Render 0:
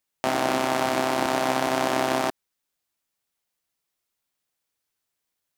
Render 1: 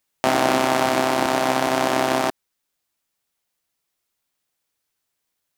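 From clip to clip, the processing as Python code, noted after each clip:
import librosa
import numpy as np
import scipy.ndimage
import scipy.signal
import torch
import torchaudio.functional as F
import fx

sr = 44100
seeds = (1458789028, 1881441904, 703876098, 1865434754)

y = fx.rider(x, sr, range_db=10, speed_s=2.0)
y = y * librosa.db_to_amplitude(4.0)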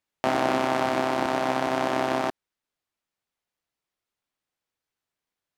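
y = fx.lowpass(x, sr, hz=3000.0, slope=6)
y = y * librosa.db_to_amplitude(-4.5)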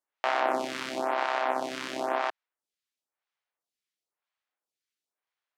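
y = fx.weighting(x, sr, curve='A')
y = fx.stagger_phaser(y, sr, hz=0.98)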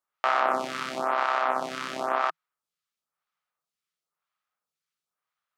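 y = fx.graphic_eq_31(x, sr, hz=(160, 315, 1250), db=(11, -6, 11))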